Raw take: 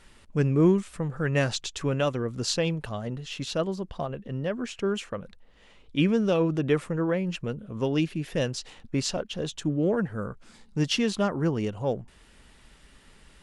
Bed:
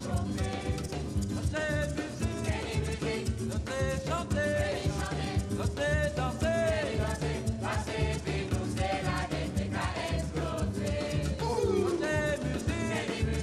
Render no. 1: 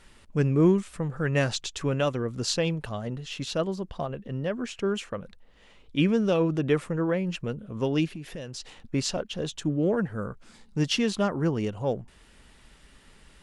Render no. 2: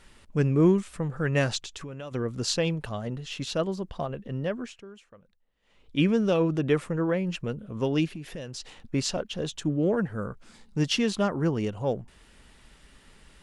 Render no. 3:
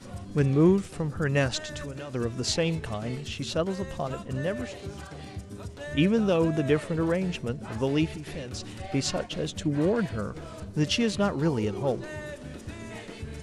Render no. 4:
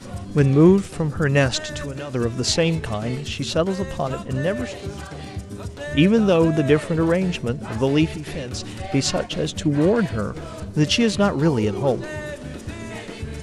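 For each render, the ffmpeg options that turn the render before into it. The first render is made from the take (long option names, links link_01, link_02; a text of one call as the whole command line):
ffmpeg -i in.wav -filter_complex "[0:a]asettb=1/sr,asplit=3[link_01][link_02][link_03];[link_01]atrim=end=8.104[link_04];[link_02]atrim=start=8.1:end=8.6,asetpts=PTS-STARTPTS,afade=type=in:duration=0.004:curve=qsin,afade=type=out:start_time=0.496:duration=0.004:curve=qsin,acompressor=threshold=-34dB:ratio=6:attack=3.2:release=140:knee=1:detection=peak[link_05];[link_03]atrim=start=8.596[link_06];[link_04][link_05]acrossfade=duration=0.004:curve1=hsin:curve2=qsin[link_07];[link_07][link_06]acrossfade=duration=0.004:curve1=qsin:curve2=hsin" out.wav
ffmpeg -i in.wav -filter_complex "[0:a]asplit=3[link_01][link_02][link_03];[link_01]afade=type=out:start_time=1.58:duration=0.02[link_04];[link_02]acompressor=threshold=-36dB:ratio=5:attack=3.2:release=140:knee=1:detection=peak,afade=type=in:start_time=1.58:duration=0.02,afade=type=out:start_time=2.11:duration=0.02[link_05];[link_03]afade=type=in:start_time=2.11:duration=0.02[link_06];[link_04][link_05][link_06]amix=inputs=3:normalize=0,asplit=3[link_07][link_08][link_09];[link_07]atrim=end=4.85,asetpts=PTS-STARTPTS,afade=type=out:start_time=4.49:duration=0.36:silence=0.112202[link_10];[link_08]atrim=start=4.85:end=5.62,asetpts=PTS-STARTPTS,volume=-19dB[link_11];[link_09]atrim=start=5.62,asetpts=PTS-STARTPTS,afade=type=in:duration=0.36:silence=0.112202[link_12];[link_10][link_11][link_12]concat=n=3:v=0:a=1" out.wav
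ffmpeg -i in.wav -i bed.wav -filter_complex "[1:a]volume=-8.5dB[link_01];[0:a][link_01]amix=inputs=2:normalize=0" out.wav
ffmpeg -i in.wav -af "volume=7dB" out.wav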